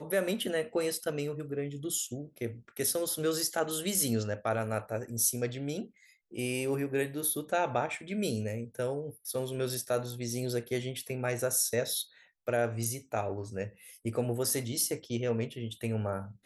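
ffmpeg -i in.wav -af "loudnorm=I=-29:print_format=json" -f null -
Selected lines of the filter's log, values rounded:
"input_i" : "-32.7",
"input_tp" : "-13.8",
"input_lra" : "1.7",
"input_thresh" : "-42.8",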